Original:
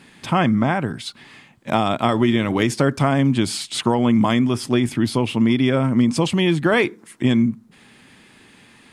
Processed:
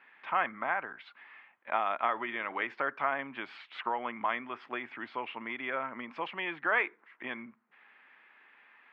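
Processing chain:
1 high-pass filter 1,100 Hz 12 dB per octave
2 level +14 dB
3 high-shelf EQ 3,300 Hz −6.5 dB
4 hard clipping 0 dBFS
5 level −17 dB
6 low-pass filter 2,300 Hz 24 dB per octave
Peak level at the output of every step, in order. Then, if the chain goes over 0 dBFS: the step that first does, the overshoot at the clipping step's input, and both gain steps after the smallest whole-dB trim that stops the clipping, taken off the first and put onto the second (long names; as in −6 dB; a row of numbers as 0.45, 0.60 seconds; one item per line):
−7.5, +6.5, +3.5, 0.0, −17.0, −15.5 dBFS
step 2, 3.5 dB
step 2 +10 dB, step 5 −13 dB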